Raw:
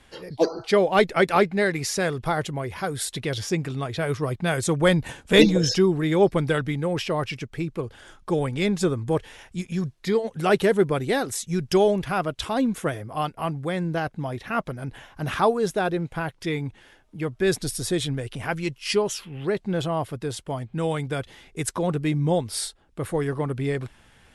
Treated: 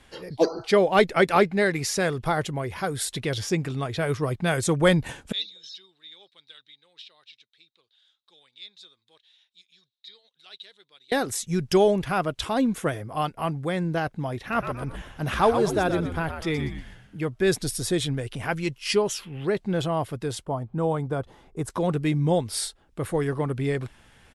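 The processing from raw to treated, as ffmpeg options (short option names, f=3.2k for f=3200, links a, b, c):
-filter_complex "[0:a]asettb=1/sr,asplit=3[a][b][c];[a]atrim=end=5.324[d];[b]atrim=start=5.32:end=11.12,asetpts=PTS-STARTPTS,afade=t=in:d=0.004:c=qsin,afade=t=out:st=5.796:d=0.004:c=qsin,bandpass=f=3.8k:t=q:w=12[e];[c]atrim=start=11.116[f];[d][e]acrossfade=d=0.004:c1=hsin:c2=qsin[g];[g][f]acrossfade=d=0.004:c1=qsin:c2=hsin,asplit=3[h][i][j];[h]afade=t=out:st=14.51:d=0.02[k];[i]asplit=6[l][m][n][o][p][q];[m]adelay=121,afreqshift=-87,volume=-7dB[r];[n]adelay=242,afreqshift=-174,volume=-15.2dB[s];[o]adelay=363,afreqshift=-261,volume=-23.4dB[t];[p]adelay=484,afreqshift=-348,volume=-31.5dB[u];[q]adelay=605,afreqshift=-435,volume=-39.7dB[v];[l][r][s][t][u][v]amix=inputs=6:normalize=0,afade=t=in:st=14.51:d=0.02,afade=t=out:st=17.19:d=0.02[w];[j]afade=t=in:st=17.19:d=0.02[x];[k][w][x]amix=inputs=3:normalize=0,asettb=1/sr,asplit=3[y][z][aa];[y]atrim=end=20.454[ab];[z]atrim=start=20.45:end=21.7,asetpts=PTS-STARTPTS,afade=t=in:d=0.004:c=qsin,afade=t=out:st=1.246:d=0.004:c=qsin,highshelf=f=1.5k:t=q:w=1.5:g=-10.5[ac];[aa]atrim=start=21.696[ad];[ab][ac]acrossfade=d=0.004:c1=hsin:c2=qsin[ae];[ae][ad]acrossfade=d=0.004:c1=qsin:c2=hsin"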